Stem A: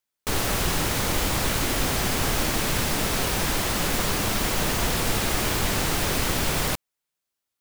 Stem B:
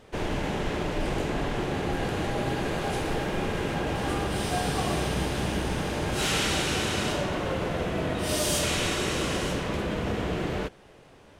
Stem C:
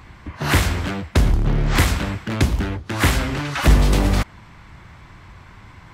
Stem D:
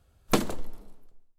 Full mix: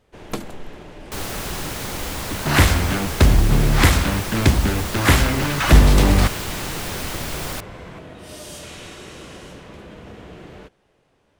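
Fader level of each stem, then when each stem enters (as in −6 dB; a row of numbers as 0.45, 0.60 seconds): −4.0, −10.5, +2.5, −5.0 decibels; 0.85, 0.00, 2.05, 0.00 seconds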